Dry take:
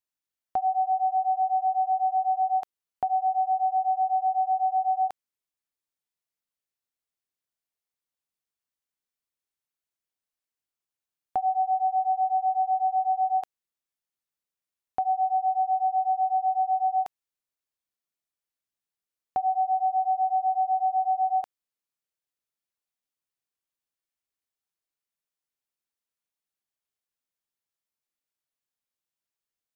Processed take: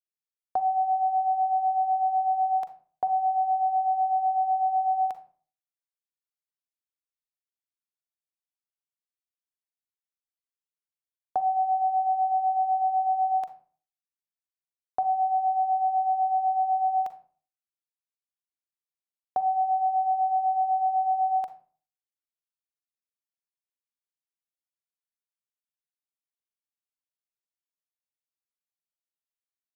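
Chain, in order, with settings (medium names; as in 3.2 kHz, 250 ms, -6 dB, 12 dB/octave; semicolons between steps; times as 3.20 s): gate with hold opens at -23 dBFS; on a send at -11 dB: peaking EQ 160 Hz +14 dB 0.24 oct + reverberation RT60 0.40 s, pre-delay 38 ms; on the sum: tape noise reduction on one side only encoder only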